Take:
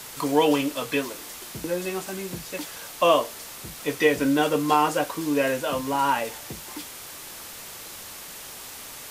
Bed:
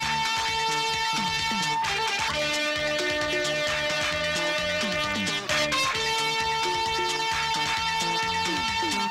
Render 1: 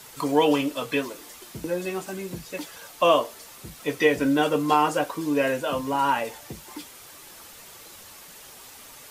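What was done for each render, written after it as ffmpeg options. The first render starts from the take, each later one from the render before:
-af "afftdn=nr=7:nf=-40"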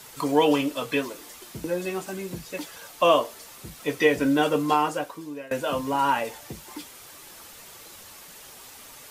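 -filter_complex "[0:a]asplit=2[s0][s1];[s0]atrim=end=5.51,asetpts=PTS-STARTPTS,afade=t=out:st=4.58:d=0.93:silence=0.0668344[s2];[s1]atrim=start=5.51,asetpts=PTS-STARTPTS,afade=t=in:d=0.004:c=hsin:silence=0.0668344[s3];[s2][s3]concat=n=2:v=0:a=1"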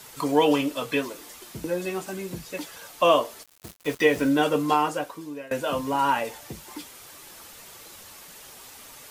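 -filter_complex "[0:a]asettb=1/sr,asplit=3[s0][s1][s2];[s0]atrim=end=3.434[s3];[s1]atrim=start=3.43:end=4.29,asetpts=PTS-STARTPTS,afade=t=in:d=0.004:c=qsin,afade=t=out:st=0.856:d=0.004:c=qsin,aeval=exprs='val(0)*gte(abs(val(0)),0.015)':c=same[s4];[s2]atrim=start=4.286[s5];[s3][s4]acrossfade=d=0.004:c1=hsin:c2=qsin[s6];[s6][s5]acrossfade=d=0.004:c1=qsin:c2=hsin"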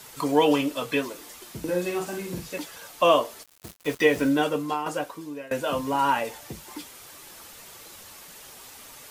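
-filter_complex "[0:a]asettb=1/sr,asplit=3[s0][s1][s2];[s0]atrim=end=1.634[s3];[s1]atrim=start=1.63:end=2.58,asetpts=PTS-STARTPTS,afade=t=in:d=0.004:c=qsin,afade=t=out:st=0.946:d=0.004:c=qsin,asplit=2[s4][s5];[s5]adelay=45,volume=0.631[s6];[s4][s6]amix=inputs=2:normalize=0,atrim=end_sample=41895[s7];[s2]atrim=start=2.576[s8];[s3][s7]acrossfade=d=0.004:c1=hsin:c2=qsin[s9];[s9][s8]acrossfade=d=0.004:c1=qsin:c2=hsin,asplit=2[s10][s11];[s10]atrim=end=4.86,asetpts=PTS-STARTPTS,afade=t=out:st=4.26:d=0.6:silence=0.334965[s12];[s11]atrim=start=4.86,asetpts=PTS-STARTPTS,afade=t=in:d=0.004:c=hsin:silence=0.334965[s13];[s12][s13]concat=n=2:v=0:a=1"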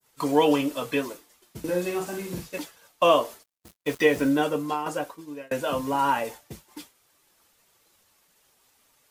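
-af "agate=range=0.0224:threshold=0.0224:ratio=3:detection=peak,adynamicequalizer=threshold=0.01:dfrequency=3100:dqfactor=0.7:tfrequency=3100:tqfactor=0.7:attack=5:release=100:ratio=0.375:range=2:mode=cutabove:tftype=bell"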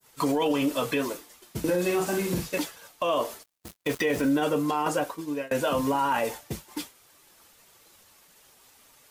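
-filter_complex "[0:a]asplit=2[s0][s1];[s1]acompressor=threshold=0.0282:ratio=6,volume=1.26[s2];[s0][s2]amix=inputs=2:normalize=0,alimiter=limit=0.141:level=0:latency=1:release=12"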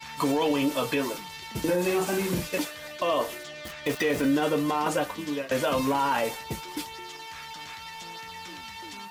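-filter_complex "[1:a]volume=0.188[s0];[0:a][s0]amix=inputs=2:normalize=0"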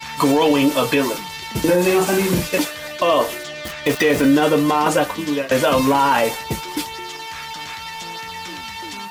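-af "volume=2.99"

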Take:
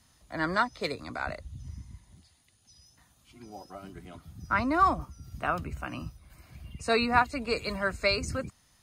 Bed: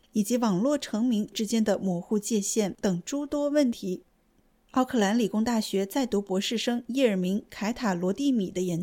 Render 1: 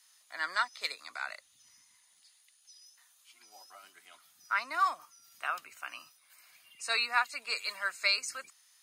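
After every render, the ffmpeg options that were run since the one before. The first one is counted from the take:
-af "highpass=1400,highshelf=f=5500:g=4.5"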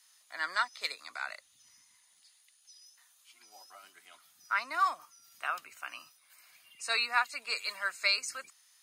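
-af anull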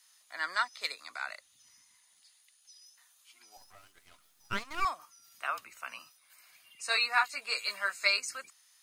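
-filter_complex "[0:a]asettb=1/sr,asplit=3[s0][s1][s2];[s0]atrim=end=3.574[s3];[s1]atrim=start=3.57:end=4.85,asetpts=PTS-STARTPTS,afade=t=in:d=0.004:c=qsin,afade=t=out:st=1.276:d=0.004:c=qsin,aeval=exprs='max(val(0),0)':c=same[s4];[s2]atrim=start=4.846[s5];[s3][s4]acrossfade=d=0.004:c1=hsin:c2=qsin[s6];[s6][s5]acrossfade=d=0.004:c1=qsin:c2=hsin,asettb=1/sr,asplit=3[s7][s8][s9];[s7]atrim=end=5.474[s10];[s8]atrim=start=5.47:end=5.99,asetpts=PTS-STARTPTS,afade=t=in:d=0.004:c=qsin,afade=t=out:st=0.516:d=0.004:c=qsin,afreqshift=-52[s11];[s9]atrim=start=5.986[s12];[s10][s11]acrossfade=d=0.004:c1=hsin:c2=qsin[s13];[s13][s12]acrossfade=d=0.004:c1=qsin:c2=hsin,asettb=1/sr,asplit=3[s14][s15][s16];[s14]atrim=end=6.874[s17];[s15]atrim=start=6.87:end=8.2,asetpts=PTS-STARTPTS,afade=t=in:d=0.004:c=qsin,afade=t=out:st=1.326:d=0.004:c=qsin,asplit=2[s18][s19];[s19]adelay=15,volume=0.631[s20];[s18][s20]amix=inputs=2:normalize=0,atrim=end_sample=58653[s21];[s16]atrim=start=8.196[s22];[s17][s21]acrossfade=d=0.004:c1=hsin:c2=qsin[s23];[s23][s22]acrossfade=d=0.004:c1=qsin:c2=hsin"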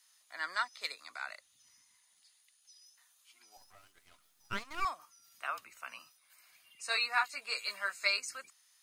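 -af "volume=0.668"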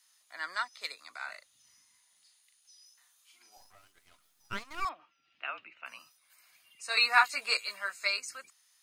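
-filter_complex "[0:a]asettb=1/sr,asplit=3[s0][s1][s2];[s0]atrim=end=1.164[s3];[s1]atrim=start=1.16:end=3.69,asetpts=PTS-STARTPTS,afade=t=in:d=0.004:c=qsin,afade=t=out:st=2.526:d=0.004:c=qsin,asplit=2[s4][s5];[s5]adelay=39,volume=0.562[s6];[s4][s6]amix=inputs=2:normalize=0,atrim=end_sample=111573[s7];[s2]atrim=start=3.686[s8];[s3][s7]acrossfade=d=0.004:c1=hsin:c2=qsin[s9];[s9][s8]acrossfade=d=0.004:c1=qsin:c2=hsin,asettb=1/sr,asplit=3[s10][s11][s12];[s10]atrim=end=4.894[s13];[s11]atrim=start=4.89:end=5.86,asetpts=PTS-STARTPTS,afade=t=in:d=0.004:c=qsin,afade=t=out:st=0.966:d=0.004:c=qsin,highpass=110,equalizer=f=320:t=q:w=4:g=7,equalizer=f=1100:t=q:w=4:g=-7,equalizer=f=2700:t=q:w=4:g=9,lowpass=f=3300:w=0.5412,lowpass=f=3300:w=1.3066[s14];[s12]atrim=start=5.856[s15];[s13][s14]acrossfade=d=0.004:c1=hsin:c2=qsin[s16];[s16][s15]acrossfade=d=0.004:c1=qsin:c2=hsin,asplit=3[s17][s18][s19];[s17]atrim=end=6.972[s20];[s18]atrim=start=6.968:end=7.572,asetpts=PTS-STARTPTS,volume=2.37[s21];[s19]atrim=start=7.568[s22];[s20][s21]acrossfade=d=0.004:c1=hsin:c2=hsin[s23];[s23][s22]acrossfade=d=0.004:c1=hsin:c2=hsin"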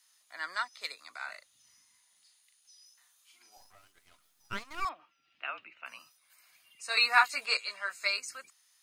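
-filter_complex "[0:a]asplit=3[s0][s1][s2];[s0]afade=t=out:st=7.45:d=0.02[s3];[s1]highpass=260,lowpass=7600,afade=t=in:st=7.45:d=0.02,afade=t=out:st=7.89:d=0.02[s4];[s2]afade=t=in:st=7.89:d=0.02[s5];[s3][s4][s5]amix=inputs=3:normalize=0"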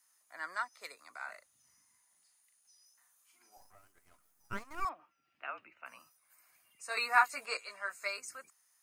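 -af "equalizer=f=3600:t=o:w=1.3:g=-14"

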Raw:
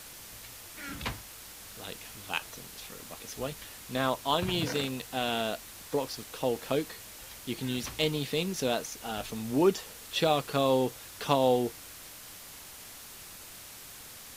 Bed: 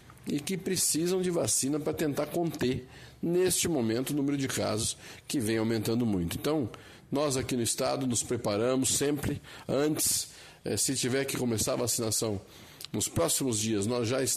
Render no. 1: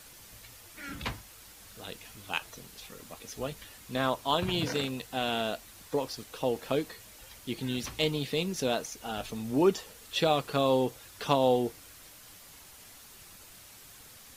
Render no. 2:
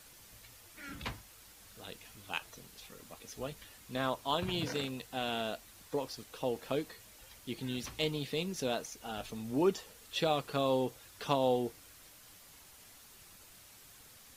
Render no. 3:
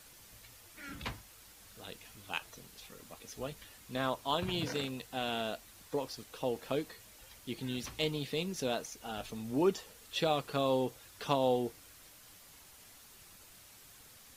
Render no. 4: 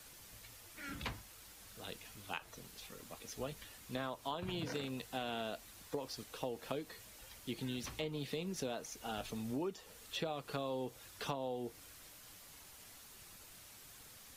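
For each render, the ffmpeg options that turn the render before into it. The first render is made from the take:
-af "afftdn=nr=6:nf=-48"
-af "volume=0.562"
-af anull
-filter_complex "[0:a]acrossover=split=330|2200[s0][s1][s2];[s2]alimiter=level_in=2.66:limit=0.0631:level=0:latency=1:release=289,volume=0.376[s3];[s0][s1][s3]amix=inputs=3:normalize=0,acompressor=threshold=0.0158:ratio=10"

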